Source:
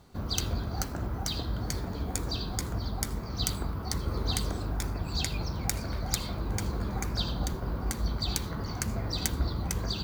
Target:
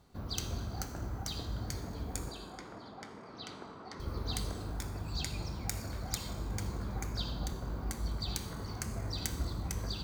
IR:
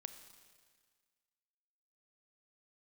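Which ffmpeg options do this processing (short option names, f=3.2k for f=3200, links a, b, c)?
-filter_complex "[0:a]asettb=1/sr,asplit=3[a][b][c];[a]atrim=end=2.294[d];[b]atrim=start=2.29:end=4,asetpts=PTS-STARTPTS,afade=t=in:d=0.004:c=qsin,afade=t=out:st=1.706:d=0.004:c=qsin,highpass=280,lowpass=3k[e];[c]atrim=start=3.996[f];[d][e]acrossfade=d=0.004:c1=hsin:c2=qsin[g];[g][f]acrossfade=d=0.004:c1=qsin:c2=hsin[h];[1:a]atrim=start_sample=2205,asetrate=61740,aresample=44100[i];[h][i]afir=irnorm=-1:irlink=0,volume=1dB"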